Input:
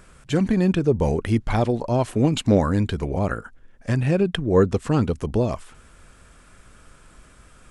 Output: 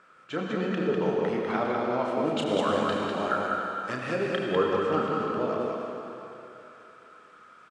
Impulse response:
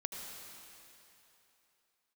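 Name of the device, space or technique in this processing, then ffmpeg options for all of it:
station announcement: -filter_complex "[0:a]asplit=3[s0][s1][s2];[s0]afade=t=out:st=2.38:d=0.02[s3];[s1]aemphasis=mode=production:type=75kf,afade=t=in:st=2.38:d=0.02,afade=t=out:st=4.25:d=0.02[s4];[s2]afade=t=in:st=4.25:d=0.02[s5];[s3][s4][s5]amix=inputs=3:normalize=0,highpass=320,lowpass=3900,equalizer=f=1300:t=o:w=0.34:g=11,aecho=1:1:32.07|198.3:0.501|0.708[s6];[1:a]atrim=start_sample=2205[s7];[s6][s7]afir=irnorm=-1:irlink=0,volume=0.531"

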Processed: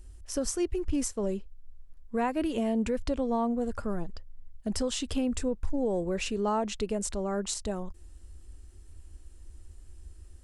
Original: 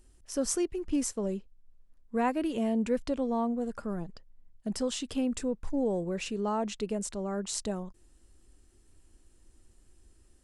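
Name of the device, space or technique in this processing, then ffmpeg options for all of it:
car stereo with a boomy subwoofer: -af "lowshelf=f=100:t=q:w=3:g=7.5,alimiter=limit=0.0631:level=0:latency=1:release=155,volume=1.5"

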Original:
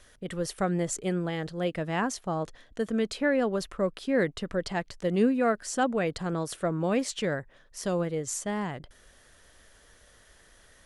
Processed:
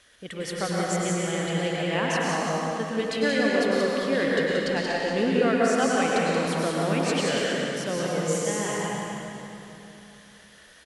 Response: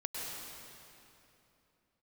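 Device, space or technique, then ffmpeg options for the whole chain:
PA in a hall: -filter_complex "[0:a]highpass=f=110:p=1,equalizer=f=2900:t=o:w=1.8:g=7,aecho=1:1:180:0.531[s0];[1:a]atrim=start_sample=2205[s1];[s0][s1]afir=irnorm=-1:irlink=0"

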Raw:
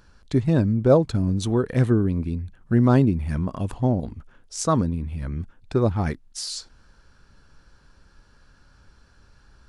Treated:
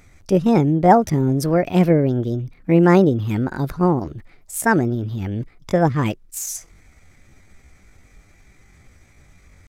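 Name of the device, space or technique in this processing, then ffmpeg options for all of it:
chipmunk voice: -af "asetrate=62367,aresample=44100,atempo=0.707107,volume=1.58"

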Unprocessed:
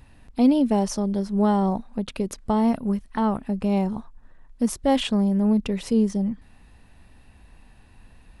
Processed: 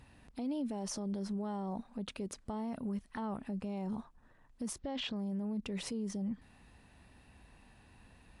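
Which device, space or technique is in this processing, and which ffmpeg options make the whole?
podcast mastering chain: -filter_complex "[0:a]asettb=1/sr,asplit=3[s0][s1][s2];[s0]atrim=end=4.764[s3];[s1]atrim=start=4.76:end=5.16,asetpts=PTS-STARTPTS,afade=t=in:d=0.004:c=qsin,afade=t=out:st=0.396:d=0.004:c=qsin,lowpass=f=5500:w=0.5412,lowpass=f=5500:w=1.3066[s4];[s2]atrim=start=5.156[s5];[s3][s4]acrossfade=d=0.004:c1=hsin:c2=qsin[s6];[s6][s5]acrossfade=d=0.004:c1=qsin:c2=hsin,highpass=f=84:p=1,acompressor=threshold=0.0891:ratio=6,alimiter=level_in=1.33:limit=0.0631:level=0:latency=1:release=41,volume=0.75,volume=0.631" -ar 24000 -c:a libmp3lame -b:a 96k

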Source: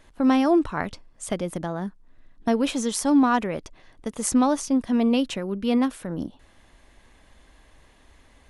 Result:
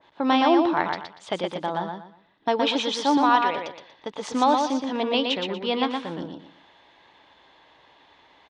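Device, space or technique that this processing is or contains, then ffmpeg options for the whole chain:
kitchen radio: -filter_complex "[0:a]asettb=1/sr,asplit=3[s0][s1][s2];[s0]atrim=end=3.174[s3];[s1]atrim=start=3.17:end=3.57,asetpts=PTS-STARTPTS,afade=t=in:d=0.004:c=qsin,afade=t=out:st=0.396:d=0.004:c=qsin,highpass=f=400:p=1[s4];[s2]atrim=start=3.566[s5];[s3][s4]acrossfade=d=0.004:c1=hsin:c2=qsin[s6];[s6][s5]acrossfade=d=0.004:c1=qsin:c2=hsin,highpass=200,equalizer=f=230:t=q:w=4:g=-9,equalizer=f=890:t=q:w=4:g=9,equalizer=f=3500:t=q:w=4:g=6,lowpass=f=4400:w=0.5412,lowpass=f=4400:w=1.3066,highshelf=f=7500:g=7,aecho=1:1:119|238|357|476:0.596|0.167|0.0467|0.0131,adynamicequalizer=threshold=0.02:dfrequency=1900:dqfactor=0.7:tfrequency=1900:tqfactor=0.7:attack=5:release=100:ratio=0.375:range=2:mode=boostabove:tftype=highshelf"

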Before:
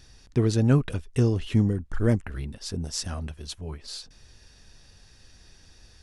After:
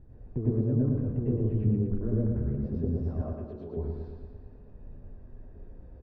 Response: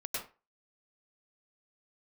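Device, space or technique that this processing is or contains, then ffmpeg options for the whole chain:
television next door: -filter_complex "[0:a]acompressor=threshold=0.0251:ratio=6,lowpass=510[s0];[1:a]atrim=start_sample=2205[s1];[s0][s1]afir=irnorm=-1:irlink=0,asettb=1/sr,asplit=3[s2][s3][s4];[s2]atrim=end=3.214[s5];[s3]atrim=start=3.21:end=3.77,asetpts=PTS-STARTPTS,afade=t=in:d=0.004:c=qsin,afade=t=out:st=0.556:d=0.004:c=qsin,highpass=290[s6];[s4]atrim=start=3.766[s7];[s5][s6]acrossfade=d=0.004:c1=hsin:c2=qsin[s8];[s8][s7]acrossfade=d=0.004:c1=qsin:c2=hsin,aemphasis=mode=reproduction:type=75kf,aecho=1:1:115|230|345|460|575|690|805|920:0.562|0.326|0.189|0.11|0.0636|0.0369|0.0214|0.0124,volume=2"

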